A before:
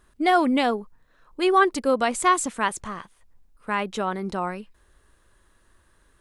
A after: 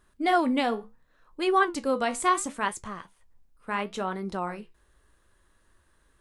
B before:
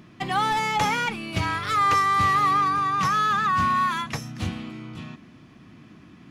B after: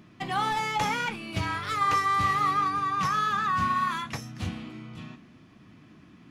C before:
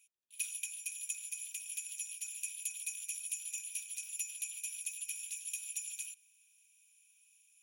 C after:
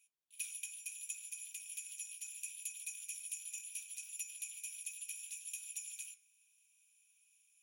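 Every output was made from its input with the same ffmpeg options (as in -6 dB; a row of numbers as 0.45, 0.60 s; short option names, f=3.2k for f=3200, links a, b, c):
-af "flanger=delay=9.6:depth=8.2:regen=-63:speed=0.71:shape=sinusoidal"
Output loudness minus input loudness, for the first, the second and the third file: -4.0, -4.5, -4.5 LU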